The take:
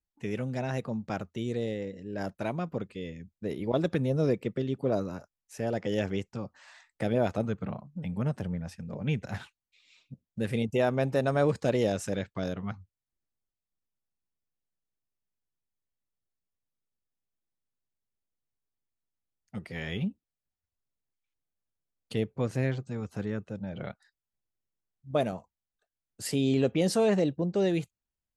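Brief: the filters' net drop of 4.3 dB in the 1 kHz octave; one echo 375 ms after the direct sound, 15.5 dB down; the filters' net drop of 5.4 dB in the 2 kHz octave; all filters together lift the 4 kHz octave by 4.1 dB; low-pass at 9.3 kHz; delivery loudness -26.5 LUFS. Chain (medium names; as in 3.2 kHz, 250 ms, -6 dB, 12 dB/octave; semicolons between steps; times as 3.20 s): low-pass 9.3 kHz; peaking EQ 1 kHz -6 dB; peaking EQ 2 kHz -7.5 dB; peaking EQ 4 kHz +8 dB; delay 375 ms -15.5 dB; trim +5.5 dB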